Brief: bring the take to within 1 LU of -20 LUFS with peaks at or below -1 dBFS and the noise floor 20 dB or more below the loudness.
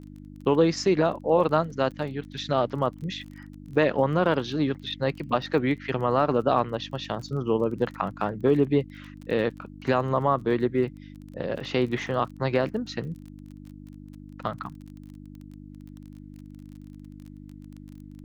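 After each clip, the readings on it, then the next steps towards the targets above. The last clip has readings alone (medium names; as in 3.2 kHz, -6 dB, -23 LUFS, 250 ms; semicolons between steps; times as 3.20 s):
tick rate 25 per s; hum 50 Hz; highest harmonic 300 Hz; hum level -43 dBFS; loudness -26.0 LUFS; peak level -8.0 dBFS; loudness target -20.0 LUFS
-> de-click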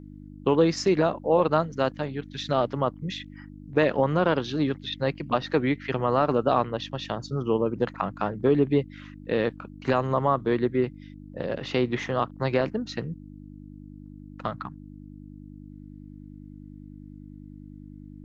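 tick rate 0 per s; hum 50 Hz; highest harmonic 300 Hz; hum level -43 dBFS
-> de-hum 50 Hz, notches 6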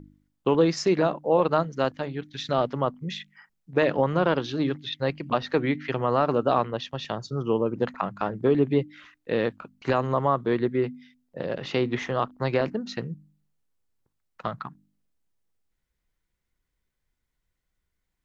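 hum not found; loudness -26.5 LUFS; peak level -8.5 dBFS; loudness target -20.0 LUFS
-> trim +6.5 dB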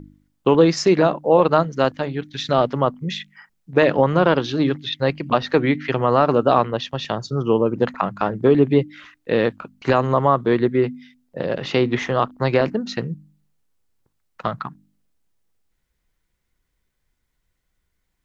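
loudness -20.0 LUFS; peak level -2.0 dBFS; noise floor -73 dBFS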